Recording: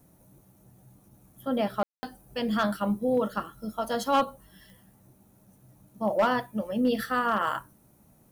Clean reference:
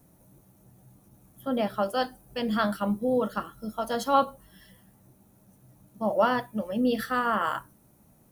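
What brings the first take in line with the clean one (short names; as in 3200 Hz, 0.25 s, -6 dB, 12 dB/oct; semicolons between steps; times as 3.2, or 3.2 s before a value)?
clip repair -17 dBFS; de-click; room tone fill 1.83–2.03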